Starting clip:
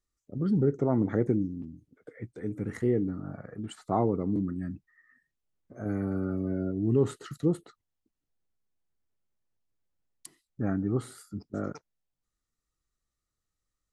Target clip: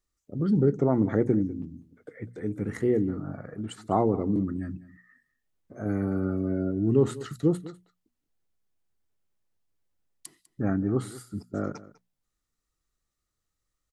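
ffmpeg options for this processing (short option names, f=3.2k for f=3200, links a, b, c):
-af "bandreject=f=60:t=h:w=6,bandreject=f=120:t=h:w=6,bandreject=f=180:t=h:w=6,bandreject=f=240:t=h:w=6,aecho=1:1:199:0.119,volume=3dB"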